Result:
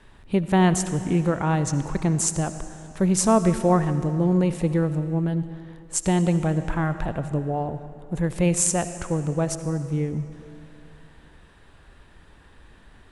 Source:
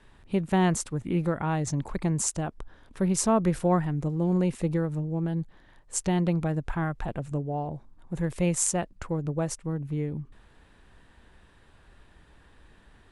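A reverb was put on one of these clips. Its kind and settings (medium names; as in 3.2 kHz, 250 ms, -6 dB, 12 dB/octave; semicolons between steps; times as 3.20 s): algorithmic reverb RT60 2.7 s, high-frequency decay 0.9×, pre-delay 35 ms, DRR 11 dB; trim +4.5 dB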